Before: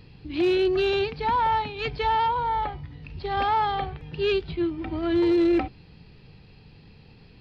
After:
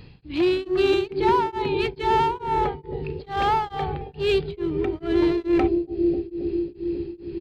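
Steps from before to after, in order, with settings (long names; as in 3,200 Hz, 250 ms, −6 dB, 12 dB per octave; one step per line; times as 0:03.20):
downsampling to 11,025 Hz
in parallel at −3 dB: gain into a clipping stage and back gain 27 dB
on the sum: bucket-brigade delay 271 ms, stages 1,024, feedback 83%, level −4 dB
tremolo along a rectified sine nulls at 2.3 Hz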